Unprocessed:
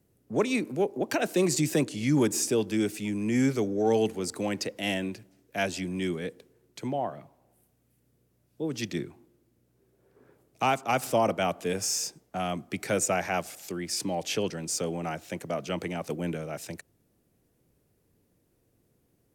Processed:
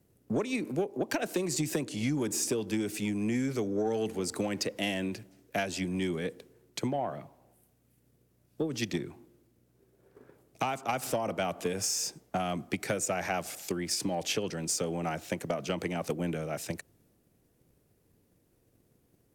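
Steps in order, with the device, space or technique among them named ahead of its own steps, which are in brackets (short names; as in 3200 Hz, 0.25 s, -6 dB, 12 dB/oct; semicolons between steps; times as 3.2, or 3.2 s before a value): drum-bus smash (transient shaper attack +8 dB, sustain +3 dB; compressor 6:1, threshold -26 dBFS, peak gain reduction 12 dB; soft clip -19.5 dBFS, distortion -20 dB)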